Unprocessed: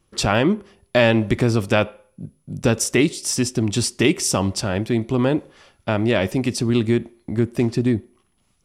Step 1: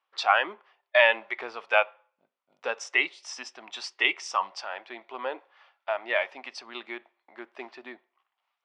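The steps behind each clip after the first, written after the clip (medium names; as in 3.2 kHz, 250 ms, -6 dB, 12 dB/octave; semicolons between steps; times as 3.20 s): Chebyshev high-pass 800 Hz, order 3; spectral noise reduction 9 dB; Bessel low-pass 2.4 kHz, order 4; trim +5 dB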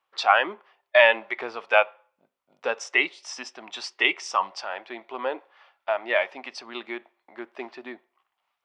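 bass shelf 460 Hz +6 dB; trim +2 dB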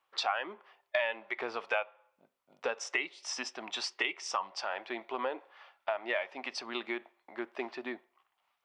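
compression 4:1, threshold -31 dBFS, peak gain reduction 16.5 dB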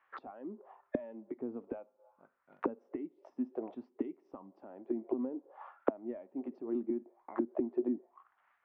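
touch-sensitive low-pass 260–1800 Hz down, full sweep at -35 dBFS; trim +1 dB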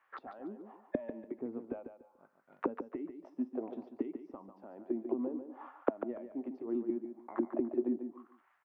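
feedback delay 145 ms, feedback 25%, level -8.5 dB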